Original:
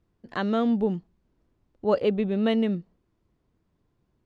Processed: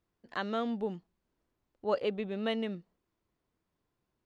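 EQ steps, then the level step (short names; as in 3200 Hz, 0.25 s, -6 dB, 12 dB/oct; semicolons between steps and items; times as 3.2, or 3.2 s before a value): low shelf 390 Hz -11 dB; -3.5 dB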